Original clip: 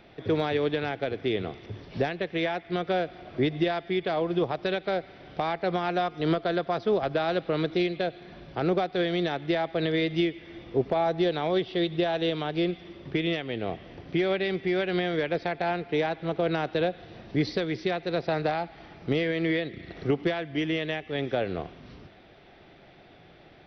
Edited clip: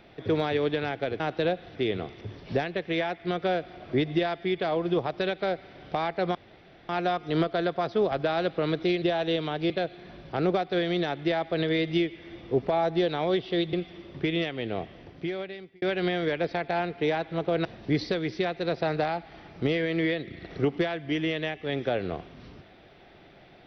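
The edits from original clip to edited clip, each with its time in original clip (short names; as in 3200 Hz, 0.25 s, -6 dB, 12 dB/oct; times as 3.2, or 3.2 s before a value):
5.8 insert room tone 0.54 s
11.96–12.64 move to 7.93
13.64–14.73 fade out linear
16.56–17.11 move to 1.2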